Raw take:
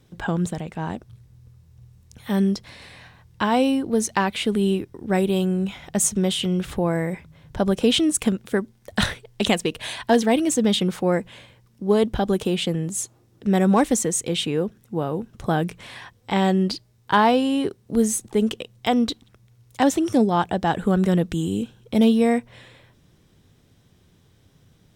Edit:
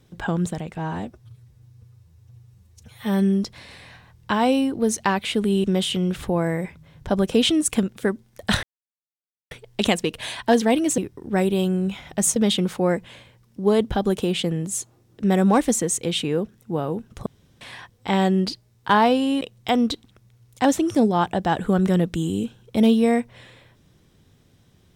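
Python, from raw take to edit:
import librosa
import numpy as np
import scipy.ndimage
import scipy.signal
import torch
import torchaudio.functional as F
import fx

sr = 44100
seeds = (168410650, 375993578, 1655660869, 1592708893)

y = fx.edit(x, sr, fx.stretch_span(start_s=0.77, length_s=1.78, factor=1.5),
    fx.move(start_s=4.75, length_s=1.38, to_s=10.59),
    fx.insert_silence(at_s=9.12, length_s=0.88),
    fx.room_tone_fill(start_s=15.49, length_s=0.35),
    fx.cut(start_s=17.64, length_s=0.95), tone=tone)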